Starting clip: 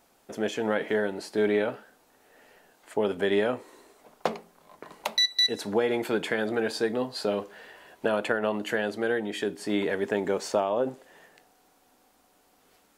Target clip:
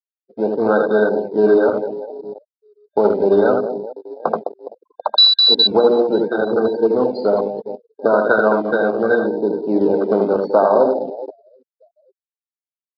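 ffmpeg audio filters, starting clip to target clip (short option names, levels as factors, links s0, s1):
-filter_complex "[0:a]asettb=1/sr,asplit=3[s0][s1][s2];[s0]atrim=end=5.724[s3];[s1]atrim=start=5.72:end=6.84,asetpts=PTS-STARTPTS,afade=t=in:d=0.004:c=qsin,afade=t=out:st=1.116:d=0.004:c=qsin,agate=range=0.0224:threshold=0.0562:ratio=3:detection=peak[s4];[s2]atrim=start=6.836[s5];[s3][s4]acrossfade=d=0.004:c1=hsin:c2=qsin[s6];[s6][s5]acrossfade=d=0.004:c1=qsin:c2=hsin,aecho=1:1:80|208|412.8|740.5|1265:0.631|0.398|0.251|0.158|0.1,afftfilt=real='re*gte(hypot(re,im),0.0447)':imag='im*gte(hypot(re,im),0.0447)':win_size=1024:overlap=0.75,afwtdn=0.0316,lowshelf=f=310:g=-8.5,asplit=2[s7][s8];[s8]acrusher=bits=5:mode=log:mix=0:aa=0.000001,volume=0.562[s9];[s7][s9]amix=inputs=2:normalize=0,afftfilt=real='re*(1-between(b*sr/4096,1600,3600))':imag='im*(1-between(b*sr/4096,1600,3600))':win_size=4096:overlap=0.75,acrossover=split=130|1100[s10][s11][s12];[s10]acrusher=samples=23:mix=1:aa=0.000001:lfo=1:lforange=36.8:lforate=0.71[s13];[s13][s11][s12]amix=inputs=3:normalize=0,aresample=11025,aresample=44100,alimiter=level_in=3.35:limit=0.891:release=50:level=0:latency=1,volume=0.891"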